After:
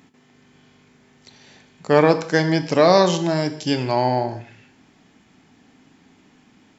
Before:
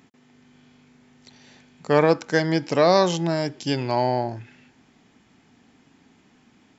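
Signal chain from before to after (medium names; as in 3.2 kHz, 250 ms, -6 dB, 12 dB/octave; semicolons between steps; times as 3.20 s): gated-style reverb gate 230 ms falling, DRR 9 dB; trim +2.5 dB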